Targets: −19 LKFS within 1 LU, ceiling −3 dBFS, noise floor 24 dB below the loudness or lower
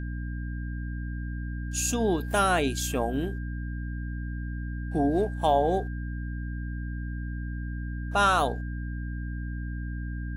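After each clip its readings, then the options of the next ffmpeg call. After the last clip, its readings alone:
mains hum 60 Hz; hum harmonics up to 300 Hz; level of the hum −31 dBFS; interfering tone 1,600 Hz; level of the tone −45 dBFS; integrated loudness −29.5 LKFS; sample peak −11.0 dBFS; target loudness −19.0 LKFS
→ -af "bandreject=frequency=60:width_type=h:width=4,bandreject=frequency=120:width_type=h:width=4,bandreject=frequency=180:width_type=h:width=4,bandreject=frequency=240:width_type=h:width=4,bandreject=frequency=300:width_type=h:width=4"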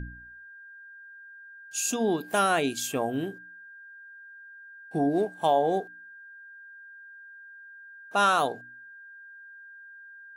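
mains hum none found; interfering tone 1,600 Hz; level of the tone −45 dBFS
→ -af "bandreject=frequency=1600:width=30"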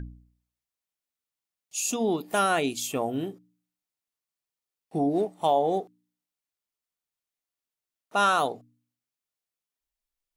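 interfering tone none found; integrated loudness −26.5 LKFS; sample peak −12.0 dBFS; target loudness −19.0 LKFS
→ -af "volume=7.5dB"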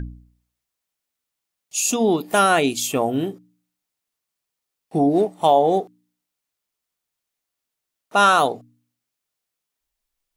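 integrated loudness −19.5 LKFS; sample peak −4.5 dBFS; background noise floor −83 dBFS

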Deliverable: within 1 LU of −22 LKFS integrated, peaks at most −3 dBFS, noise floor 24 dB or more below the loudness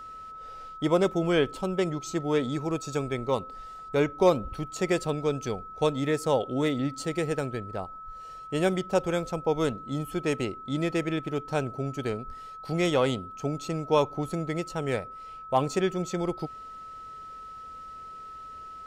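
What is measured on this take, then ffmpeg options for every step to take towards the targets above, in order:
interfering tone 1,300 Hz; level of the tone −40 dBFS; integrated loudness −28.5 LKFS; sample peak −10.5 dBFS; target loudness −22.0 LKFS
→ -af "bandreject=frequency=1300:width=30"
-af "volume=6.5dB"

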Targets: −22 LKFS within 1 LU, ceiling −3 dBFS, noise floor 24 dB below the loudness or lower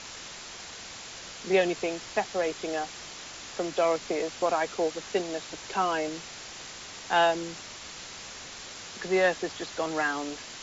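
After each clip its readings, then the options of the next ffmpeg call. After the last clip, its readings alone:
background noise floor −43 dBFS; target noise floor −55 dBFS; integrated loudness −30.5 LKFS; sample peak −12.5 dBFS; target loudness −22.0 LKFS
→ -af "afftdn=noise_reduction=12:noise_floor=-43"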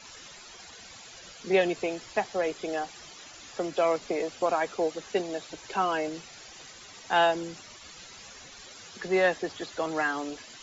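background noise floor −48 dBFS; target noise floor −53 dBFS
→ -af "afftdn=noise_reduction=6:noise_floor=-48"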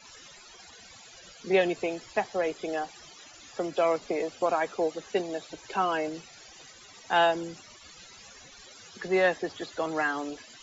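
background noise floor −51 dBFS; target noise floor −53 dBFS
→ -af "afftdn=noise_reduction=6:noise_floor=-51"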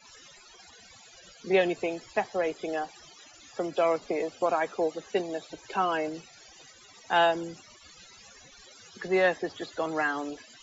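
background noise floor −54 dBFS; integrated loudness −29.0 LKFS; sample peak −12.5 dBFS; target loudness −22.0 LKFS
→ -af "volume=7dB"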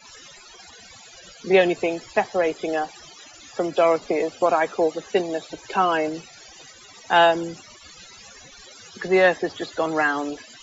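integrated loudness −22.0 LKFS; sample peak −5.5 dBFS; background noise floor −47 dBFS

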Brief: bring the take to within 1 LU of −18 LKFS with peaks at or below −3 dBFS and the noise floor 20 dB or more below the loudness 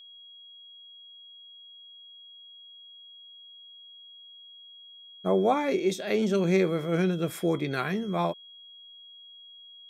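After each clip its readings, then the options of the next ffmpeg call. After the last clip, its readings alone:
interfering tone 3,300 Hz; level of the tone −47 dBFS; integrated loudness −27.0 LKFS; sample peak −12.0 dBFS; target loudness −18.0 LKFS
→ -af "bandreject=frequency=3300:width=30"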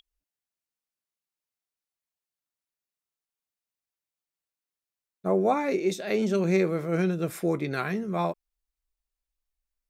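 interfering tone none found; integrated loudness −27.0 LKFS; sample peak −12.5 dBFS; target loudness −18.0 LKFS
→ -af "volume=9dB"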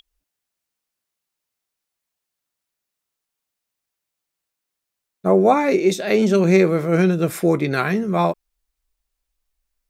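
integrated loudness −18.0 LKFS; sample peak −3.5 dBFS; background noise floor −83 dBFS

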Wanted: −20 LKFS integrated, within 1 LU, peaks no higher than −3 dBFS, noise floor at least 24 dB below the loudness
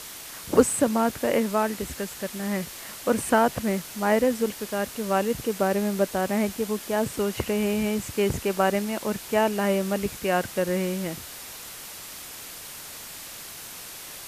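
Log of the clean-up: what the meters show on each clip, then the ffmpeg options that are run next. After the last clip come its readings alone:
background noise floor −40 dBFS; target noise floor −50 dBFS; integrated loudness −25.5 LKFS; sample peak −4.5 dBFS; target loudness −20.0 LKFS
→ -af "afftdn=noise_reduction=10:noise_floor=-40"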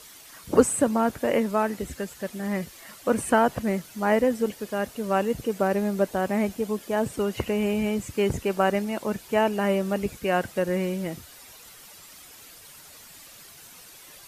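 background noise floor −48 dBFS; target noise floor −50 dBFS
→ -af "afftdn=noise_reduction=6:noise_floor=-48"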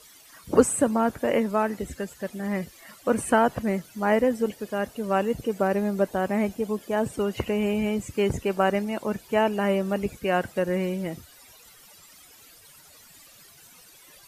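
background noise floor −52 dBFS; integrated loudness −26.0 LKFS; sample peak −4.5 dBFS; target loudness −20.0 LKFS
→ -af "volume=6dB,alimiter=limit=-3dB:level=0:latency=1"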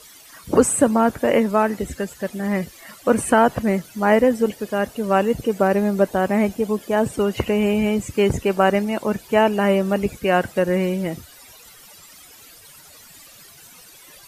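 integrated loudness −20.0 LKFS; sample peak −3.0 dBFS; background noise floor −46 dBFS

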